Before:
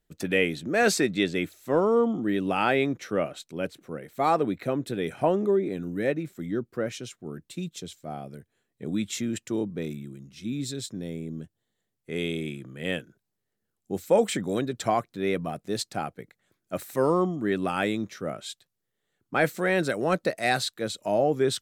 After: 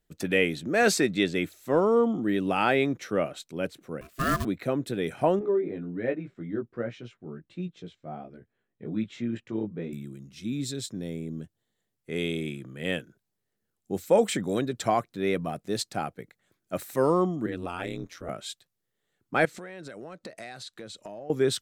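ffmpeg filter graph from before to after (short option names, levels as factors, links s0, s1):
-filter_complex "[0:a]asettb=1/sr,asplit=3[s0][s1][s2];[s0]atrim=end=4.014[s3];[s1]atrim=start=4.01:end=4.45,asetpts=PTS-STARTPTS,afade=t=in:d=0.004:c=qsin,afade=t=out:st=0.436:d=0.004:c=qsin,aeval=exprs='val(0)*sin(2*PI*530*n/s)':c=same,acrusher=bits=3:mode=log:mix=0:aa=0.000001,asuperstop=centerf=860:order=12:qfactor=2.7[s4];[s2]atrim=start=4.446[s5];[s3][s4]acrossfade=d=0.004:c1=hsin:c2=qsin[s6];[s6][s5]acrossfade=d=0.004:c1=qsin:c2=hsin,asettb=1/sr,asplit=3[s7][s8][s9];[s7]atrim=end=5.394[s10];[s8]atrim=start=5.39:end=9.93,asetpts=PTS-STARTPTS,afade=t=in:d=0.004:c=qsin,afade=t=out:st=4.536:d=0.004:c=qsin,lowpass=2400,flanger=delay=16.5:depth=2.3:speed=1.3[s11];[s9]atrim=start=9.926[s12];[s10][s11]acrossfade=d=0.004:c1=hsin:c2=qsin[s13];[s13][s12]acrossfade=d=0.004:c1=qsin:c2=hsin,asettb=1/sr,asplit=3[s14][s15][s16];[s14]atrim=end=17.464[s17];[s15]atrim=start=17.46:end=18.29,asetpts=PTS-STARTPTS,afade=t=in:d=0.004:c=qsin,afade=t=out:st=0.826:d=0.004:c=qsin,acompressor=threshold=0.02:ratio=1.5:attack=3.2:release=140:knee=1:detection=peak,aeval=exprs='val(0)*sin(2*PI*88*n/s)':c=same[s18];[s16]atrim=start=18.286[s19];[s17][s18]acrossfade=d=0.004:c1=hsin:c2=qsin[s20];[s20][s19]acrossfade=d=0.004:c1=qsin:c2=hsin,asettb=1/sr,asplit=3[s21][s22][s23];[s21]atrim=end=19.454[s24];[s22]atrim=start=19.45:end=21.3,asetpts=PTS-STARTPTS,afade=t=in:d=0.004:c=qsin,afade=t=out:st=1.846:d=0.004:c=qsin,lowpass=8600,acompressor=threshold=0.0141:ratio=12:attack=3.2:release=140:knee=1:detection=peak[s25];[s23]atrim=start=21.296[s26];[s24][s25]acrossfade=d=0.004:c1=hsin:c2=qsin[s27];[s27][s26]acrossfade=d=0.004:c1=qsin:c2=hsin"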